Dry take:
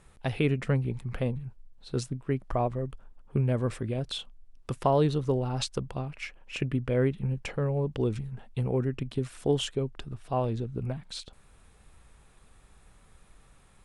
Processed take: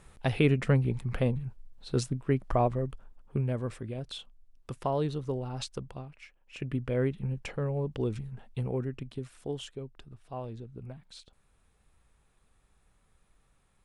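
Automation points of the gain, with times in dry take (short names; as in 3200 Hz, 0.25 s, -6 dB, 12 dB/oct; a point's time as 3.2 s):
2.68 s +2 dB
3.74 s -6 dB
5.9 s -6 dB
6.4 s -16 dB
6.71 s -3 dB
8.58 s -3 dB
9.58 s -10.5 dB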